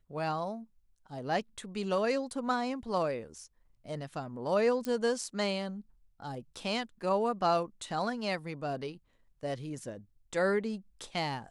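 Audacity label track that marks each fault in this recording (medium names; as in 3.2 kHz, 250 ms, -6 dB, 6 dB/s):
4.850000	4.850000	pop -20 dBFS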